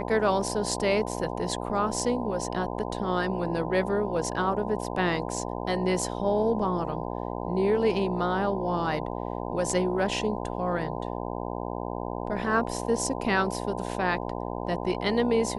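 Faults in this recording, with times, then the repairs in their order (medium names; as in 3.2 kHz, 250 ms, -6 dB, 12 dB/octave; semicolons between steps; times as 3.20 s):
buzz 60 Hz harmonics 17 -33 dBFS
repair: de-hum 60 Hz, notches 17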